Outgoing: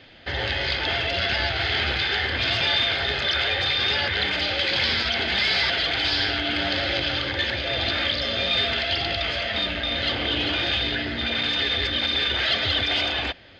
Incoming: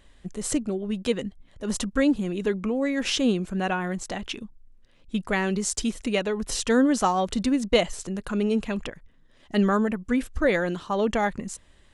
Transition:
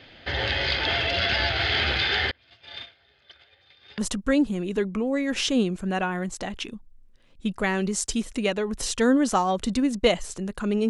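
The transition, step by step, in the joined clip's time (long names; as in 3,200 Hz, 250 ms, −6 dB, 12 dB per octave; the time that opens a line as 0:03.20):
outgoing
0:02.31–0:03.98: noise gate −18 dBFS, range −37 dB
0:03.98: continue with incoming from 0:01.67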